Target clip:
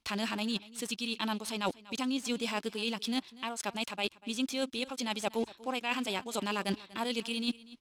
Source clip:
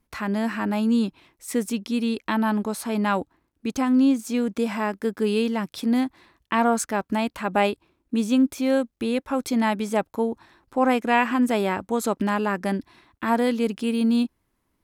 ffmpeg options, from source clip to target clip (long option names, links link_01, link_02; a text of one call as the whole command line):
ffmpeg -i in.wav -filter_complex "[0:a]asplit=2[link_01][link_02];[link_02]aeval=exprs='val(0)*gte(abs(val(0)),0.0211)':channel_layout=same,volume=-12dB[link_03];[link_01][link_03]amix=inputs=2:normalize=0,aexciter=amount=9.9:drive=4.2:freq=2700,adynamicsmooth=sensitivity=6:basefreq=5100,lowshelf=frequency=500:gain=-6.5,atempo=1.9,areverse,acompressor=threshold=-28dB:ratio=12,areverse,bass=frequency=250:gain=1,treble=frequency=4000:gain=-11,aecho=1:1:241:0.106" out.wav